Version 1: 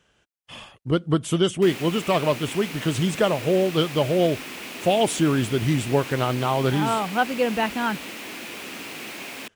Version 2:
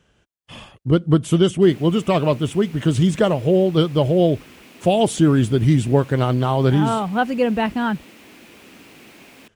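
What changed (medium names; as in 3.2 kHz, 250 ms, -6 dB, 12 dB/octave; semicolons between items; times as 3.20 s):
background -11.5 dB; master: add bass shelf 400 Hz +8.5 dB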